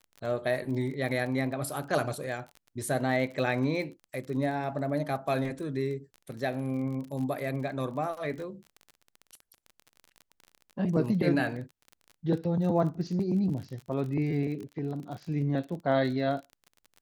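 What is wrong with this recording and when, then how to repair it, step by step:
crackle 34 per s -37 dBFS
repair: de-click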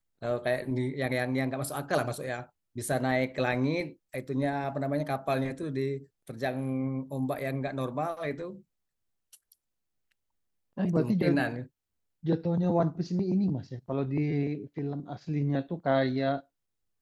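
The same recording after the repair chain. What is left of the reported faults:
nothing left

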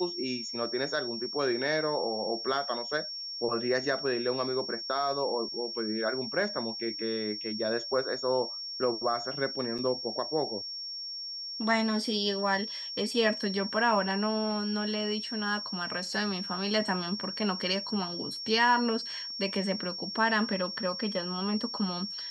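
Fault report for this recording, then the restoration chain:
whine 5.5 kHz -36 dBFS
9.78–9.79 s: dropout 6 ms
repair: band-stop 5.5 kHz, Q 30; interpolate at 9.78 s, 6 ms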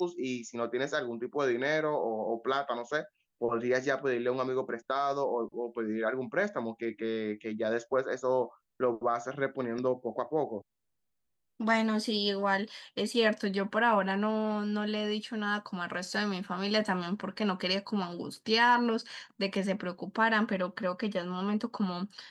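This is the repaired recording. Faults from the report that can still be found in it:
nothing left

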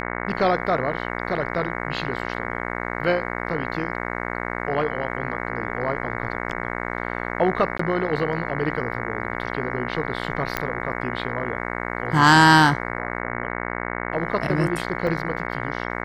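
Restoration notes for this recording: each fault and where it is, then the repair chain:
buzz 60 Hz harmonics 37 -29 dBFS
7.78–7.79 s: dropout 14 ms
10.57 s: pop -8 dBFS
15.07 s: dropout 3.1 ms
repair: de-click; de-hum 60 Hz, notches 37; interpolate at 7.78 s, 14 ms; interpolate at 15.07 s, 3.1 ms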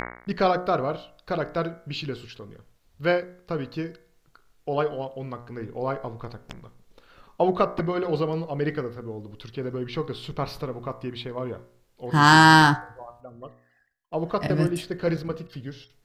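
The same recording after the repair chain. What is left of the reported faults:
nothing left

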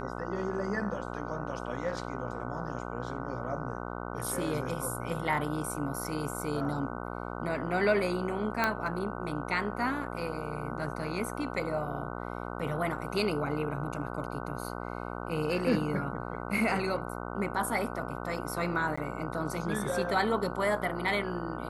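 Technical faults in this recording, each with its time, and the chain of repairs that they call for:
buzz 60 Hz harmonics 25 -38 dBFS
8.64 s: pop -13 dBFS
18.96–18.98 s: dropout 15 ms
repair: de-click; de-hum 60 Hz, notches 25; interpolate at 18.96 s, 15 ms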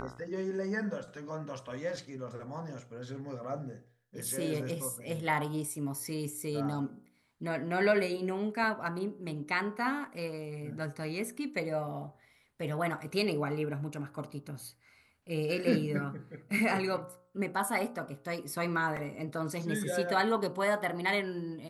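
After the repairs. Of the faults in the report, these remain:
nothing left

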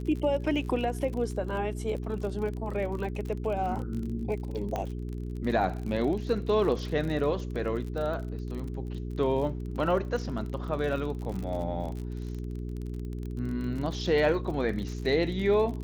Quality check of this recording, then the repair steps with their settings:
crackle 39 per s -35 dBFS
hum 60 Hz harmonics 7 -35 dBFS
4.76 s: pop -19 dBFS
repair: de-click; de-hum 60 Hz, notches 7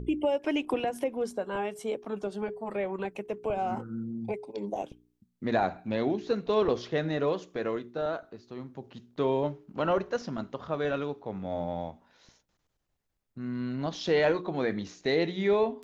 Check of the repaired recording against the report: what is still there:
nothing left

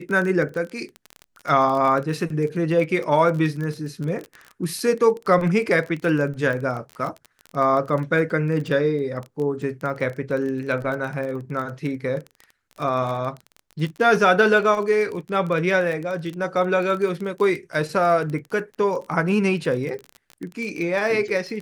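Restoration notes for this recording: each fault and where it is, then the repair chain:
crackle 23 per s -27 dBFS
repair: de-click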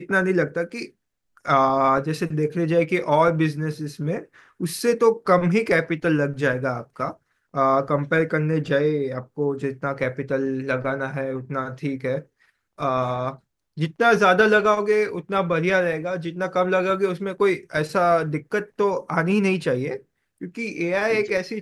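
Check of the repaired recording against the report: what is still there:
nothing left

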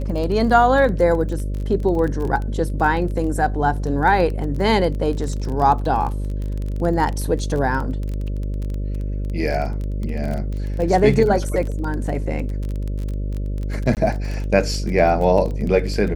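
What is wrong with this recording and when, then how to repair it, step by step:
buzz 50 Hz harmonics 12 -24 dBFS
crackle 21 per s -25 dBFS
13.95–13.97 s: dropout 18 ms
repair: de-click; de-hum 50 Hz, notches 12; interpolate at 13.95 s, 18 ms

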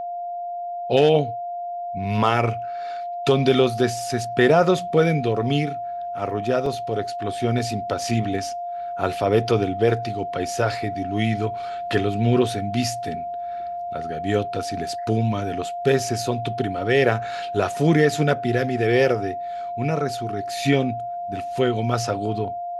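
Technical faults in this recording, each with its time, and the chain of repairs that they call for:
whine 700 Hz -27 dBFS
6.66 s: dropout 2.6 ms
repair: band-stop 700 Hz, Q 30; interpolate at 6.66 s, 2.6 ms

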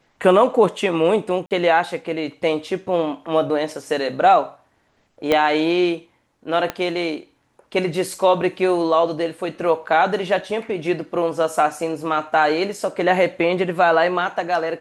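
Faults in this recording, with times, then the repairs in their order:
1.46–1.51 s: dropout 48 ms
5.32 s: pop -6 dBFS
6.70 s: pop -9 dBFS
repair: de-click; interpolate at 1.46 s, 48 ms

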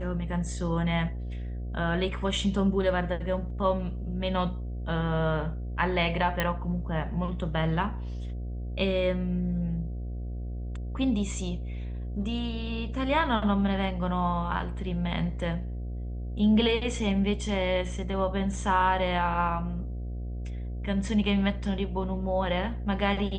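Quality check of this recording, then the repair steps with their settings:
buzz 60 Hz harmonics 12 -34 dBFS
6.40 s: pop -12 dBFS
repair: de-click; de-hum 60 Hz, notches 12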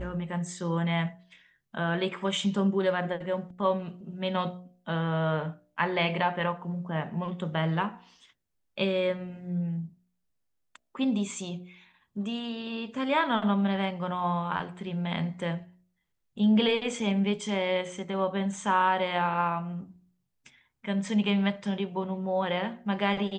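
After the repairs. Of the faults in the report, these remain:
nothing left

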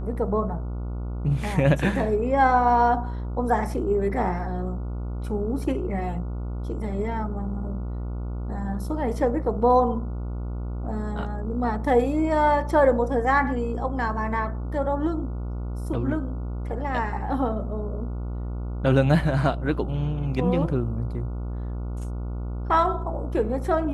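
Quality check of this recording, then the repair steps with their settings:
buzz 60 Hz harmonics 24 -30 dBFS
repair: de-hum 60 Hz, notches 24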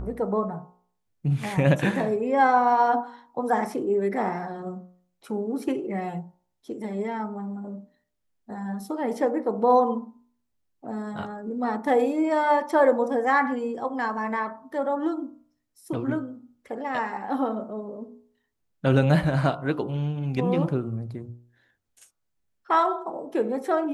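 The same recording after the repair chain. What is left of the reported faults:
nothing left

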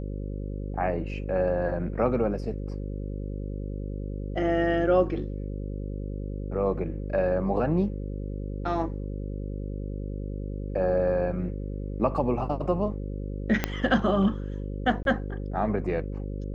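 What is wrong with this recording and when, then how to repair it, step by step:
buzz 50 Hz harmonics 11 -33 dBFS
13.64 s: pop -9 dBFS
15.03–15.05 s: dropout 22 ms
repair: de-click; de-hum 50 Hz, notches 11; interpolate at 15.03 s, 22 ms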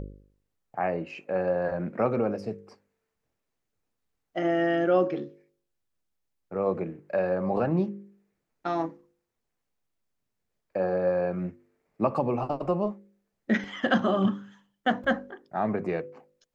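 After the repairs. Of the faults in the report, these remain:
13.64 s: pop

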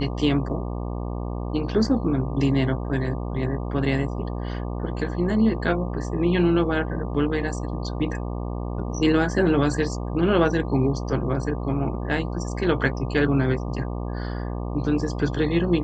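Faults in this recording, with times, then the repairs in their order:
buzz 60 Hz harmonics 20 -29 dBFS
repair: de-hum 60 Hz, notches 20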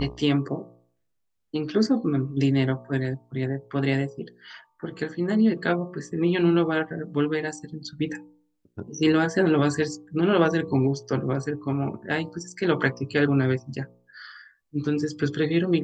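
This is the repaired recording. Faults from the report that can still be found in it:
nothing left

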